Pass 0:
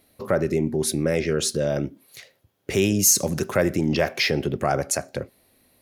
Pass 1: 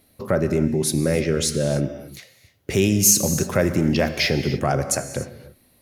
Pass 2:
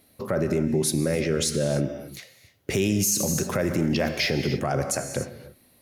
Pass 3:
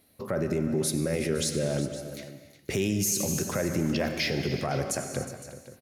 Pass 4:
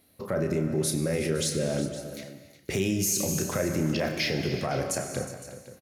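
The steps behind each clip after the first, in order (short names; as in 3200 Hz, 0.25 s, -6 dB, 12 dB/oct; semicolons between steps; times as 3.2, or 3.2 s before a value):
tone controls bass +5 dB, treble +2 dB; non-linear reverb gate 0.32 s flat, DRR 9.5 dB
low shelf 67 Hz -8.5 dB; limiter -14.5 dBFS, peak gain reduction 10.5 dB
tapped delay 94/363/512 ms -17/-14/-16 dB; gain -4 dB
doubler 32 ms -8 dB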